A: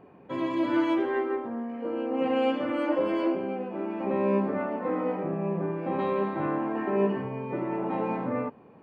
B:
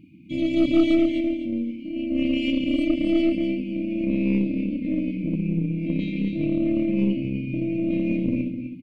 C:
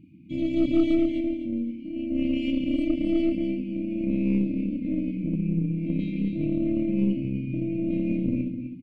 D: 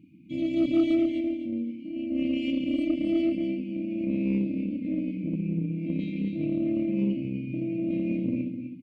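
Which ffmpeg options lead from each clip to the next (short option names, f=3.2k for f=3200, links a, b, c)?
-af "aecho=1:1:254|508|762:0.447|0.116|0.0302,afftfilt=real='re*(1-between(b*sr/4096,340,2100))':imag='im*(1-between(b*sr/4096,340,2100))':win_size=4096:overlap=0.75,aeval=exprs='0.158*(cos(1*acos(clip(val(0)/0.158,-1,1)))-cos(1*PI/2))+0.0158*(cos(4*acos(clip(val(0)/0.158,-1,1)))-cos(4*PI/2))':c=same,volume=7dB"
-af "lowshelf=f=390:g=8.5,volume=-8dB"
-af "highpass=f=190:p=1"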